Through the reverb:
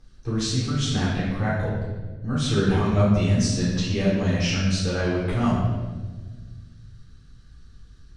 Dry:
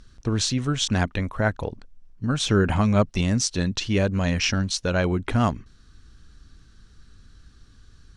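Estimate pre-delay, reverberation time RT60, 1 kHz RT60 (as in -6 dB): 3 ms, 1.4 s, 1.2 s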